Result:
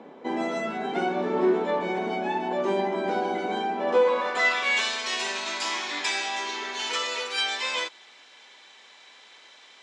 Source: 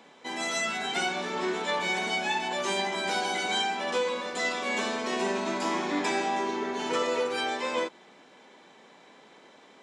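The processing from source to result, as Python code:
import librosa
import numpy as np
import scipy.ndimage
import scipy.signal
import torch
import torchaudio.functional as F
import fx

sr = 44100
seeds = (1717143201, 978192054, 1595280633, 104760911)

y = fx.rider(x, sr, range_db=4, speed_s=0.5)
y = fx.filter_sweep_bandpass(y, sr, from_hz=340.0, to_hz=4100.0, start_s=3.76, end_s=4.91, q=0.85)
y = F.gain(torch.from_numpy(y), 9.0).numpy()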